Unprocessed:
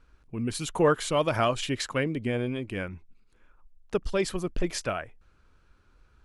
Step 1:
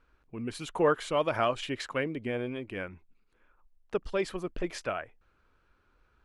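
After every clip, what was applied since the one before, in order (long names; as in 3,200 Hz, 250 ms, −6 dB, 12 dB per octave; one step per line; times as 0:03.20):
bass and treble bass −7 dB, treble −9 dB
level −2 dB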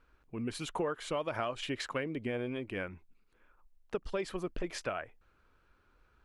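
downward compressor 6 to 1, threshold −31 dBFS, peak gain reduction 11 dB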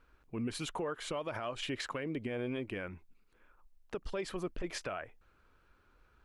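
brickwall limiter −29.5 dBFS, peak gain reduction 9.5 dB
level +1 dB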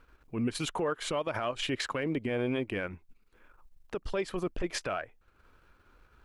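transient designer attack −4 dB, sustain −8 dB
level +7 dB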